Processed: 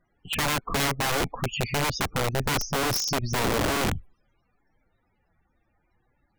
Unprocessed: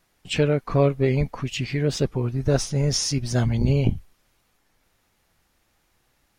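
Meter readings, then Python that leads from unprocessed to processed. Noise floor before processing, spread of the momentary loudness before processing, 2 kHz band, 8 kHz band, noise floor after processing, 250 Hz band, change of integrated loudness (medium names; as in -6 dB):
-68 dBFS, 7 LU, +6.0 dB, +0.5 dB, -72 dBFS, -6.0 dB, -3.0 dB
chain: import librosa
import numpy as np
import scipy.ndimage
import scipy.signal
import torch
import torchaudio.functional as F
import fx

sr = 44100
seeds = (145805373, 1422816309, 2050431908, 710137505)

y = fx.spec_topn(x, sr, count=32)
y = (np.mod(10.0 ** (19.5 / 20.0) * y + 1.0, 2.0) - 1.0) / 10.0 ** (19.5 / 20.0)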